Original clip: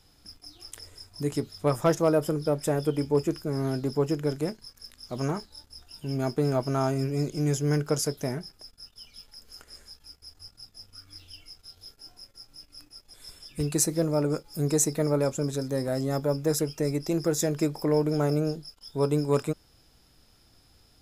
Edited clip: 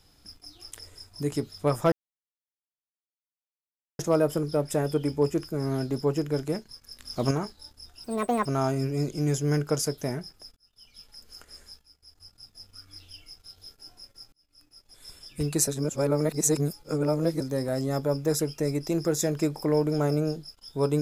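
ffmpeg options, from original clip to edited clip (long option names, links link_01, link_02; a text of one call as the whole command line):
ffmpeg -i in.wav -filter_complex "[0:a]asplit=11[link_01][link_02][link_03][link_04][link_05][link_06][link_07][link_08][link_09][link_10][link_11];[link_01]atrim=end=1.92,asetpts=PTS-STARTPTS,afade=type=out:start_time=1.916:duration=0.004:curve=hsin,apad=pad_dur=2.07[link_12];[link_02]atrim=start=1.92:end=4.922,asetpts=PTS-STARTPTS,afade=type=in:duration=0.004:curve=hsin[link_13];[link_03]atrim=start=4.918:end=5.242,asetpts=PTS-STARTPTS,volume=6.5dB[link_14];[link_04]atrim=start=5.238:end=5.974[link_15];[link_05]atrim=start=5.97:end=6.65,asetpts=PTS-STARTPTS,asetrate=72324,aresample=44100,atrim=end_sample=18285,asetpts=PTS-STARTPTS[link_16];[link_06]atrim=start=6.646:end=8.76,asetpts=PTS-STARTPTS,afade=type=out:start_time=2.11:duration=0.004:curve=hsin[link_17];[link_07]atrim=start=8.76:end=10.01,asetpts=PTS-STARTPTS,afade=type=in:duration=0.54,afade=type=out:start_time=1.246:duration=0.004:curve=hsin:silence=0.251189[link_18];[link_08]atrim=start=10.01:end=12.52,asetpts=PTS-STARTPTS,afade=type=in:duration=0.85:silence=0.251189,afade=type=out:start_time=2.506:duration=0.004:curve=hsin[link_19];[link_09]atrim=start=12.52:end=13.872,asetpts=PTS-STARTPTS,afade=type=in:duration=0.81[link_20];[link_10]atrim=start=13.868:end=15.602,asetpts=PTS-STARTPTS,areverse[link_21];[link_11]atrim=start=15.598[link_22];[link_12][link_13]concat=n=2:v=0:a=1[link_23];[link_23][link_14]acrossfade=duration=0.004:curve1=hsin:curve2=hsin[link_24];[link_24][link_15]acrossfade=duration=0.004:curve1=hsin:curve2=hsin[link_25];[link_25][link_16]acrossfade=duration=0.004:curve1=hsin:curve2=hsin[link_26];[link_17][link_18][link_19][link_20]concat=n=4:v=0:a=1[link_27];[link_26][link_27]acrossfade=duration=0.004:curve1=hsin:curve2=hsin[link_28];[link_28][link_21]acrossfade=duration=0.004:curve1=hsin:curve2=hsin[link_29];[link_29][link_22]acrossfade=duration=0.004:curve1=hsin:curve2=hsin" out.wav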